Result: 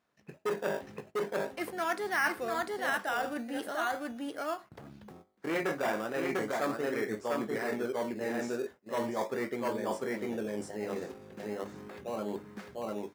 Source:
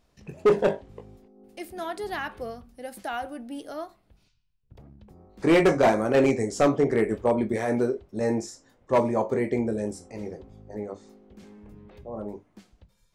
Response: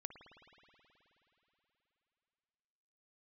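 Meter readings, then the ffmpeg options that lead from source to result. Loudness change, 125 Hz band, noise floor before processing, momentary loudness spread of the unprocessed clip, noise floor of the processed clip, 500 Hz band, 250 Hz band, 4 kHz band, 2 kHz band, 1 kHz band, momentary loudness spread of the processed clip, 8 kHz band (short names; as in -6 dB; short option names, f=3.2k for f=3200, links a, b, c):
-9.5 dB, -13.0 dB, -67 dBFS, 18 LU, -65 dBFS, -8.5 dB, -9.0 dB, -2.5 dB, 0.0 dB, -4.0 dB, 10 LU, -4.0 dB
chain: -filter_complex "[0:a]aecho=1:1:698:0.631,areverse,acompressor=threshold=-36dB:ratio=6,areverse,equalizer=f=1.6k:t=o:w=1.3:g=12,asplit=2[a][b];[b]acrusher=samples=16:mix=1:aa=0.000001:lfo=1:lforange=9.6:lforate=0.38,volume=-7dB[c];[a][c]amix=inputs=2:normalize=0,agate=range=-14dB:threshold=-48dB:ratio=16:detection=peak,highpass=160"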